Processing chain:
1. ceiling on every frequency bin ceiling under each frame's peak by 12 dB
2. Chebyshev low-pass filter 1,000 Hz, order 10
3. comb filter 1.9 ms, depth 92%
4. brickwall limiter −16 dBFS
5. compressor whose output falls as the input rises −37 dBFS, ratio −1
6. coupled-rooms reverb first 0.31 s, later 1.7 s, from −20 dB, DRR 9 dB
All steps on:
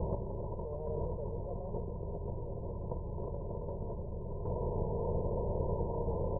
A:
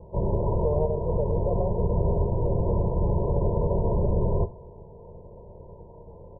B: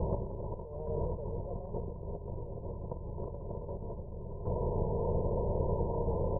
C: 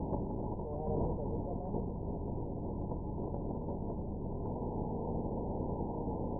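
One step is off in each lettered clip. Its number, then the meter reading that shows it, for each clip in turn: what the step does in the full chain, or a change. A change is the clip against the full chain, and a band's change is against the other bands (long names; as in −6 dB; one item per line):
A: 5, change in crest factor −3.5 dB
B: 4, average gain reduction 2.0 dB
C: 3, 250 Hz band +6.0 dB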